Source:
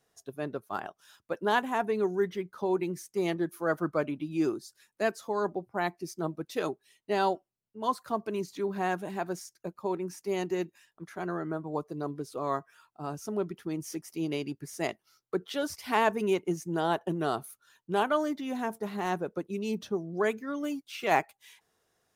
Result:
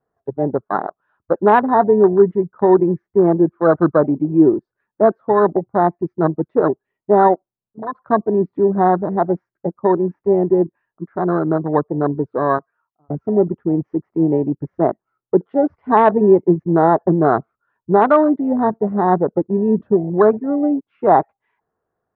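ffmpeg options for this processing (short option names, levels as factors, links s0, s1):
-filter_complex "[0:a]asettb=1/sr,asplit=3[s0][s1][s2];[s0]atrim=end=7.344[s3];[s1]atrim=start=7.34:end=7.95,asetpts=PTS-STARTPTS,afade=t=in:d=0.004:c=qsin,afade=t=out:st=0.606:d=0.004:c=qsin,acompressor=threshold=0.00447:ratio=2:attack=3.2:release=140:knee=1:detection=peak[s4];[s2]atrim=start=7.946[s5];[s3][s4]acrossfade=d=0.004:c1=hsin:c2=qsin[s6];[s6][s5]acrossfade=d=0.004:c1=qsin:c2=hsin,asplit=2[s7][s8];[s7]atrim=end=13.1,asetpts=PTS-STARTPTS,afade=t=out:st=12.34:d=0.76[s9];[s8]atrim=start=13.1,asetpts=PTS-STARTPTS,afade=t=in:d=0.004:c=hsin[s10];[s9][s10]concat=n=2:v=0:a=1,lowpass=f=1400:w=0.5412,lowpass=f=1400:w=1.3066,afwtdn=0.0178,alimiter=level_in=7.5:limit=0.891:release=50:level=0:latency=1,volume=0.891"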